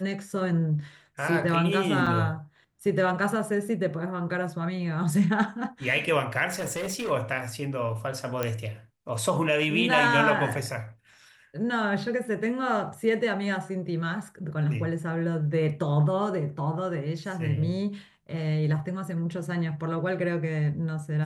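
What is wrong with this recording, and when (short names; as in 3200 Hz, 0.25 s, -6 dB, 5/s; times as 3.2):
2.06–2.07 gap 5.4 ms
6.49–7.11 clipped -27.5 dBFS
8.43 pop -13 dBFS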